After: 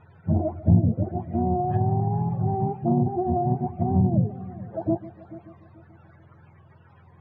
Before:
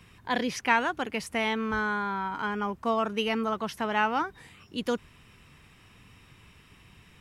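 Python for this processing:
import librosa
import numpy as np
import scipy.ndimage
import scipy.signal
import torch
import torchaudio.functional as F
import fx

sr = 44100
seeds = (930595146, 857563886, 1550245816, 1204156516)

y = fx.octave_mirror(x, sr, pivot_hz=400.0)
y = scipy.signal.sosfilt(scipy.signal.butter(2, 1500.0, 'lowpass', fs=sr, output='sos'), y)
y = fx.echo_heads(y, sr, ms=145, heads='first and third', feedback_pct=46, wet_db=-17.5)
y = fx.env_lowpass_down(y, sr, base_hz=560.0, full_db=-22.0)
y = fx.doppler_dist(y, sr, depth_ms=0.29)
y = y * librosa.db_to_amplitude(6.0)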